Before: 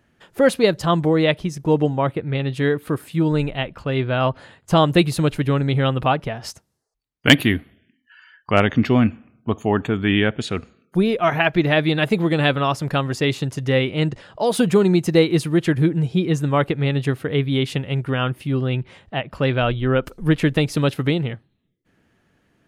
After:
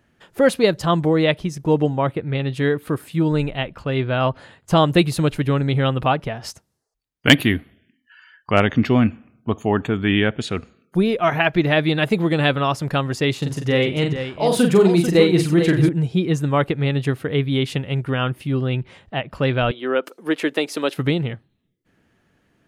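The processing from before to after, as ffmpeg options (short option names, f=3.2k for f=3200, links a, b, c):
-filter_complex "[0:a]asettb=1/sr,asplit=3[a][b][c];[a]atrim=end=13.384[d];[b]atrim=start=13.38:end=15.89,asetpts=PTS-STARTPTS,afade=t=in:d=0.004:c=qsin,afade=t=out:st=2.506:d=0.004:c=qsin,aecho=1:1:41|91|442:0.596|0.15|0.355,atrim=end_sample=110691[e];[c]atrim=start=15.886[f];[d][e]acrossfade=d=0.004:c1=hsin:c2=qsin[g];[g][f]acrossfade=d=0.004:c1=qsin:c2=hsin,asettb=1/sr,asplit=3[h][i][j];[h]atrim=end=19.714[k];[i]atrim=start=19.71:end=20.97,asetpts=PTS-STARTPTS,afade=t=in:d=0.004:c=qsin,afade=t=out:st=1.256:d=0.004:c=qsin,highpass=f=290:w=0.5412,highpass=f=290:w=1.3066[l];[j]atrim=start=20.966[m];[k][l]acrossfade=d=0.004:c1=hsin:c2=qsin[n];[n][m]acrossfade=d=0.004:c1=qsin:c2=hsin"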